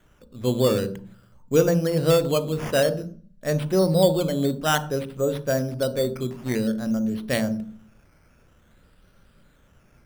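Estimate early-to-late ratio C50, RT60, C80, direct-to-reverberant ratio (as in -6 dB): 14.5 dB, 0.40 s, 18.5 dB, 11.5 dB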